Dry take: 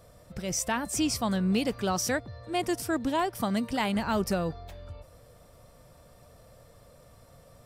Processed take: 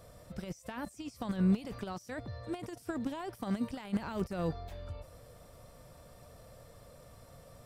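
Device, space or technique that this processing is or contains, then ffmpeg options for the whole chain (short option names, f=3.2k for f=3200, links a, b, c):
de-esser from a sidechain: -filter_complex "[0:a]asplit=2[a][b];[b]highpass=4.3k,apad=whole_len=337796[c];[a][c]sidechaincompress=threshold=-55dB:ratio=16:attack=0.89:release=21"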